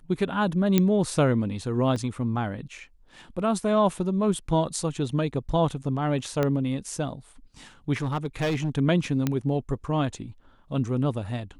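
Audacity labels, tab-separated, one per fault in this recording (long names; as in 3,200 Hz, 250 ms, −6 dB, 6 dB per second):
0.780000	0.780000	click −7 dBFS
1.960000	1.960000	drop-out 2.1 ms
6.430000	6.430000	click −12 dBFS
8.020000	8.780000	clipping −22 dBFS
9.270000	9.270000	click −11 dBFS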